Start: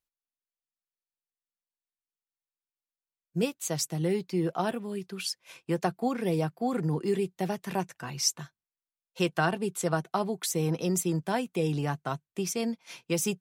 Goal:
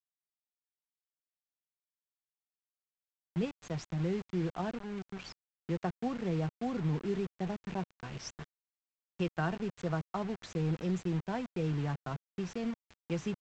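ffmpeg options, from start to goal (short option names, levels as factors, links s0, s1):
-af "aresample=16000,acrusher=bits=5:mix=0:aa=0.000001,aresample=44100,bass=f=250:g=7,treble=f=4000:g=-13,volume=0.376"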